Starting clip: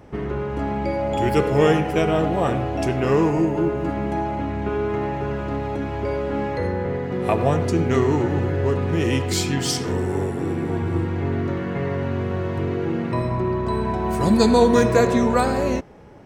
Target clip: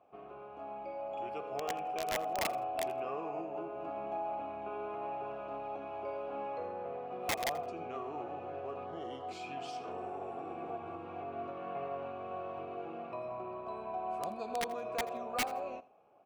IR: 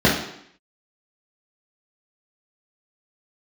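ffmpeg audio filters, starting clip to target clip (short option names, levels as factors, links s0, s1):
-filter_complex "[0:a]dynaudnorm=f=480:g=11:m=5.01,alimiter=limit=0.335:level=0:latency=1:release=151,asplit=3[s0][s1][s2];[s0]bandpass=f=730:t=q:w=8,volume=1[s3];[s1]bandpass=f=1090:t=q:w=8,volume=0.501[s4];[s2]bandpass=f=2440:t=q:w=8,volume=0.355[s5];[s3][s4][s5]amix=inputs=3:normalize=0,aeval=exprs='(mod(11.2*val(0)+1,2)-1)/11.2':c=same,asettb=1/sr,asplit=3[s6][s7][s8];[s6]atrim=end=8.864[s9];[s7]atrim=start=8.86:end=9.29,asetpts=PTS-STARTPTS,afade=t=in:d=0.004:c=qsin,afade=t=out:st=0.426:d=0.004:c=qsin,asuperstop=centerf=2500:order=8:qfactor=4.2[s10];[s8]atrim=start=9.286[s11];[s9][s10]acrossfade=d=0.004:c1=hsin:c2=qsin[s12];[s12][s11]acrossfade=d=0.004:c1=qsin:c2=hsin,aecho=1:1:83|166:0.0944|0.0217,volume=0.501"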